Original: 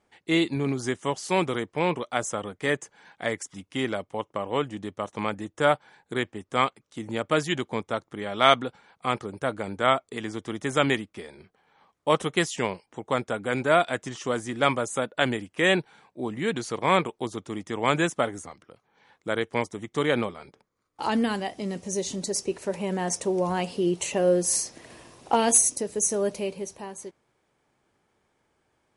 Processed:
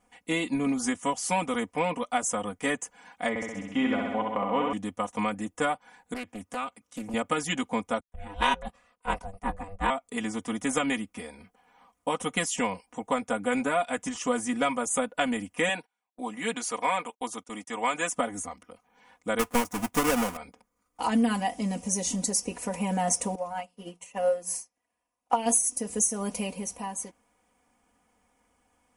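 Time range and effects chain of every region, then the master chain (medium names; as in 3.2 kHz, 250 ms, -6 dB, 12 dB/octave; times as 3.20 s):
3.29–4.73 s: low-pass 2.9 kHz + flutter echo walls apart 11.2 m, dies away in 1.1 s
6.14–7.14 s: high-pass 58 Hz 24 dB/octave + compression 3:1, threshold -34 dBFS + loudspeaker Doppler distortion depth 0.36 ms
8.00–9.90 s: ring modulator 290 Hz + three bands expanded up and down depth 100%
15.69–18.14 s: high-pass 600 Hz 6 dB/octave + gate -50 dBFS, range -31 dB
19.39–20.37 s: square wave that keeps the level + dynamic bell 1.2 kHz, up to +5 dB, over -34 dBFS, Q 0.74
23.35–25.46 s: peaking EQ 1.3 kHz +6.5 dB 2.7 oct + hum notches 60/120/180/240/300/360/420/480 Hz + upward expansion 2.5:1, over -40 dBFS
whole clip: fifteen-band graphic EQ 160 Hz -5 dB, 400 Hz -10 dB, 1.6 kHz -6 dB, 4 kHz -10 dB, 10 kHz +4 dB; compression 6:1, threshold -28 dBFS; comb 4.1 ms, depth 96%; trim +3 dB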